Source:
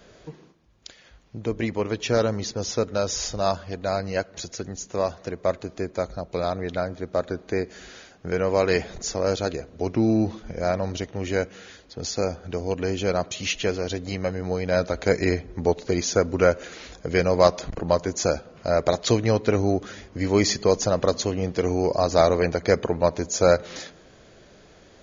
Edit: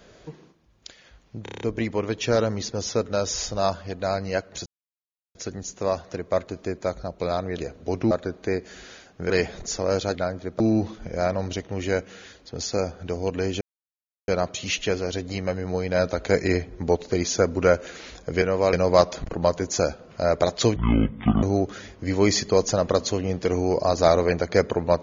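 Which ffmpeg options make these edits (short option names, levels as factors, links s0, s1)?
-filter_complex "[0:a]asplit=18[s0][s1][s2][s3][s4][s5][s6][s7][s8][s9][s10][s11][s12][s13][s14][s15][s16][s17];[s0]atrim=end=1.462[s18];[s1]atrim=start=1.428:end=1.462[s19];[s2]atrim=start=1.428:end=1.462[s20];[s3]atrim=start=1.428:end=1.462[s21];[s4]atrim=start=1.428:end=1.462[s22];[s5]atrim=start=1.428:end=1.462[s23];[s6]atrim=start=1.428:end=4.48,asetpts=PTS-STARTPTS,afade=t=out:st=3.048:d=0.004:c=hsin,apad=pad_dur=0.69[s24];[s7]atrim=start=4.48:end=6.712,asetpts=PTS-STARTPTS,afade=t=in:d=0.004:c=hsin[s25];[s8]atrim=start=9.508:end=10.042[s26];[s9]atrim=start=7.158:end=8.352[s27];[s10]atrim=start=8.658:end=9.512[s28];[s11]atrim=start=6.708:end=7.162[s29];[s12]atrim=start=10.038:end=13.05,asetpts=PTS-STARTPTS,afade=t=out:st=3.008:d=0.004:c=hsin,apad=pad_dur=0.67[s30];[s13]atrim=start=13.05:end=17.192,asetpts=PTS-STARTPTS,afade=t=in:d=0.004:c=hsin[s31];[s14]atrim=start=8.348:end=8.662[s32];[s15]atrim=start=17.188:end=19.224[s33];[s16]atrim=start=19.22:end=19.56,asetpts=PTS-STARTPTS,asetrate=22491,aresample=44100[s34];[s17]atrim=start=19.556[s35];[s18][s19]acrossfade=d=0.004:c1=hsin:c2=hsin[s36];[s36][s20]acrossfade=d=0.004:c1=hsin:c2=hsin[s37];[s37][s21]acrossfade=d=0.004:c1=hsin:c2=hsin[s38];[s38][s22]acrossfade=d=0.004:c1=hsin:c2=hsin[s39];[s39][s23]acrossfade=d=0.004:c1=hsin:c2=hsin[s40];[s24][s25]concat=n=2:v=0:a=1[s41];[s40][s41]acrossfade=d=0.004:c1=hsin:c2=hsin[s42];[s42][s26]acrossfade=d=0.004:c1=hsin:c2=hsin[s43];[s43][s27]acrossfade=d=0.004:c1=hsin:c2=hsin[s44];[s44][s28]acrossfade=d=0.004:c1=hsin:c2=hsin[s45];[s45][s29]acrossfade=d=0.004:c1=hsin:c2=hsin[s46];[s30][s31]concat=n=2:v=0:a=1[s47];[s46][s47]acrossfade=d=0.004:c1=hsin:c2=hsin[s48];[s48][s32]acrossfade=d=0.004:c1=hsin:c2=hsin[s49];[s49][s33]acrossfade=d=0.004:c1=hsin:c2=hsin[s50];[s50][s34]acrossfade=d=0.004:c1=hsin:c2=hsin[s51];[s51][s35]acrossfade=d=0.004:c1=hsin:c2=hsin"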